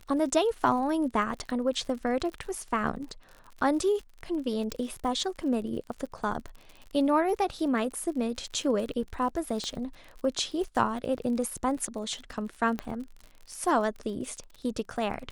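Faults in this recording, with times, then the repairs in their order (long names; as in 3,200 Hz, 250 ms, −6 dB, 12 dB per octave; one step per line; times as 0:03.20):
surface crackle 48 per second −37 dBFS
0:04.72: click
0:09.64: click −21 dBFS
0:12.79: click −18 dBFS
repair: click removal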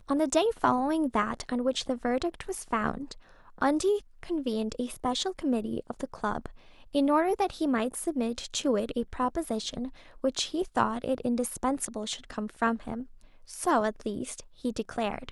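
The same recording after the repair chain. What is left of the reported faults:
0:04.72: click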